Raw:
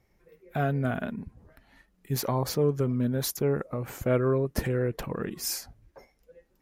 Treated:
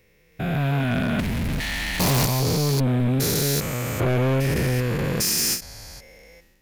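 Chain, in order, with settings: spectrogram pixelated in time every 400 ms; 1.19–2.26 s: power-law waveshaper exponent 0.5; peaking EQ 410 Hz -5.5 dB 1.3 oct; level rider gain up to 10 dB; resonant high shelf 1.8 kHz +6.5 dB, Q 1.5; saturation -23 dBFS, distortion -9 dB; endings held to a fixed fall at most 190 dB/s; trim +5.5 dB

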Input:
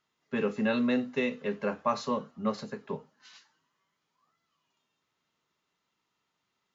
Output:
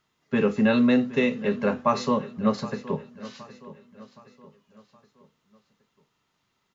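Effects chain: bass shelf 140 Hz +10 dB; feedback delay 769 ms, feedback 45%, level -17 dB; trim +5.5 dB

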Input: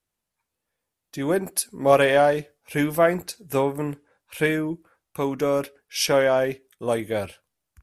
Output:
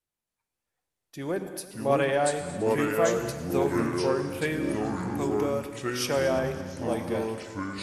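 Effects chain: ever faster or slower copies 276 ms, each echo -4 st, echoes 3; 1.31–2.22 s: treble shelf 5.5 kHz -8.5 dB; multi-head delay 111 ms, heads all three, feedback 71%, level -24 dB; gated-style reverb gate 290 ms flat, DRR 9 dB; trim -7.5 dB

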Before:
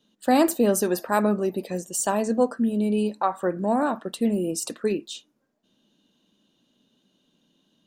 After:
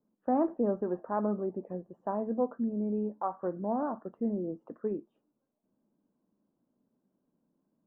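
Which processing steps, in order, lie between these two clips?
inverse Chebyshev low-pass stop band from 4 kHz, stop band 60 dB; trim -8.5 dB

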